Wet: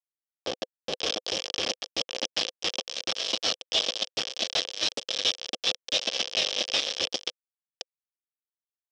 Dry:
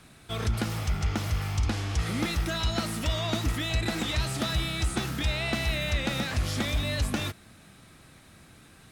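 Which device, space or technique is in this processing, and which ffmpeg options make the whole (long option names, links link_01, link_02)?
hand-held game console: -filter_complex "[0:a]asettb=1/sr,asplit=3[link_01][link_02][link_03];[link_01]atrim=end=1.014[link_04];[link_02]atrim=start=1.01:end=1.55,asetpts=PTS-STARTPTS,afade=type=in:duration=0.004:curve=qsin,afade=type=out:start_time=0.536:duration=0.004:curve=qsin,lowshelf=frequency=88:gain=3.5[link_05];[link_03]atrim=start=1.546[link_06];[link_04][link_05]acrossfade=duration=0.004:curve1=hsin:curve2=qsin[link_07];[link_07][link_06]acrossfade=duration=0.004:curve1=qsin:curve2=hsin,acrossover=split=530[link_08][link_09];[link_09]adelay=670[link_10];[link_08][link_10]amix=inputs=2:normalize=0,acrusher=bits=3:mix=0:aa=0.000001,highpass=480,equalizer=frequency=510:width_type=q:width=4:gain=9,equalizer=frequency=950:width_type=q:width=4:gain=-9,equalizer=frequency=1400:width_type=q:width=4:gain=-10,equalizer=frequency=2000:width_type=q:width=4:gain=-7,equalizer=frequency=3200:width_type=q:width=4:gain=10,equalizer=frequency=5400:width_type=q:width=4:gain=10,lowpass=frequency=5700:width=0.5412,lowpass=frequency=5700:width=1.3066"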